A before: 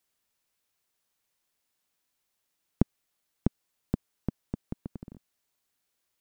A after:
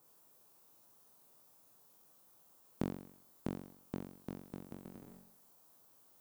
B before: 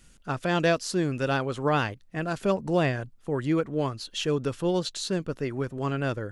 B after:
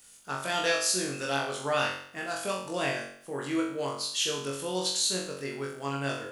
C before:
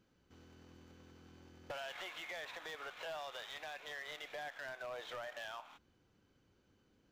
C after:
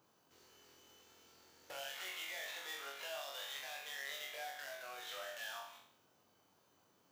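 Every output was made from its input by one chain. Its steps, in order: RIAA curve recording; flutter echo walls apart 3.7 m, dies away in 0.6 s; band noise 100–1200 Hz -70 dBFS; trim -6 dB

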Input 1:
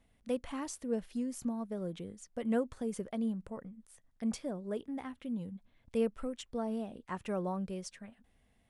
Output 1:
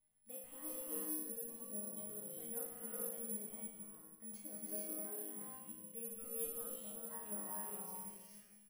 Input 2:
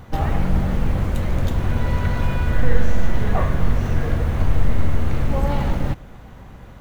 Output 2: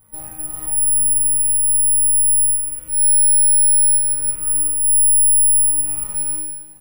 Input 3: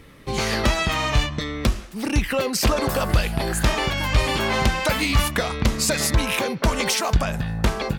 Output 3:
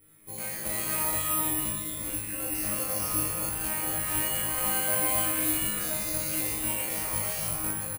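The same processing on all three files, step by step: rattle on loud lows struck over -21 dBFS, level -24 dBFS; saturation -4.5 dBFS; treble shelf 8.2 kHz -6.5 dB; on a send: delay 233 ms -14.5 dB; on the sum: dynamic bell 3.5 kHz, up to -5 dB, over -48 dBFS, Q 5.3; chord resonator G#2 fifth, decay 0.78 s; peak limiter -17.5 dBFS; reverse; compression, threshold -31 dBFS; reverse; gated-style reverb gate 490 ms rising, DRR -4 dB; careless resampling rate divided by 4×, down filtered, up zero stuff

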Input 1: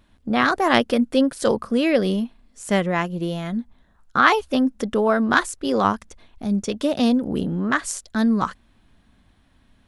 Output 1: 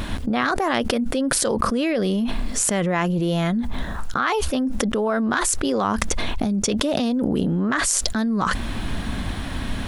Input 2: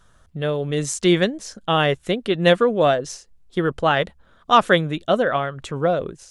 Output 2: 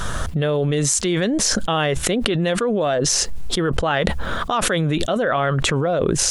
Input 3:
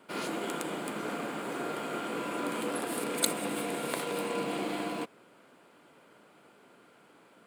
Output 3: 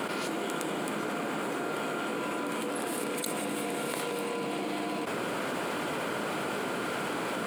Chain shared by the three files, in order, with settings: level flattener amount 100%; trim -9 dB

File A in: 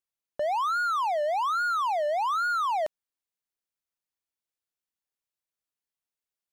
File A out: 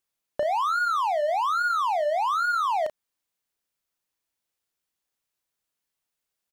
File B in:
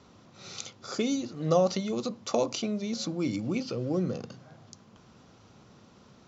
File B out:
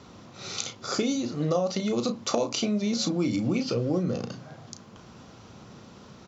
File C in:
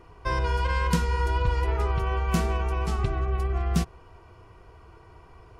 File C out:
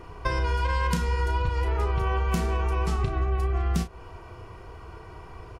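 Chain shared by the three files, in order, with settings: compression 6:1, threshold -30 dBFS; doubling 34 ms -9 dB; trim +7 dB

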